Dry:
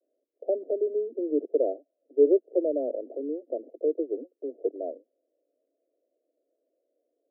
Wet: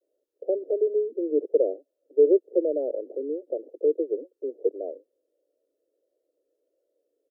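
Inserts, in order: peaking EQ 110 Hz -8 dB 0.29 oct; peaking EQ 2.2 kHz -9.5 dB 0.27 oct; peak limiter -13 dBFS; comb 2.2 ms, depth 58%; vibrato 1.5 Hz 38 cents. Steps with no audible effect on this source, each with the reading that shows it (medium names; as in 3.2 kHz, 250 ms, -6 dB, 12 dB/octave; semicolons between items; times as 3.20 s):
peaking EQ 110 Hz: input has nothing below 240 Hz; peaking EQ 2.2 kHz: input has nothing above 720 Hz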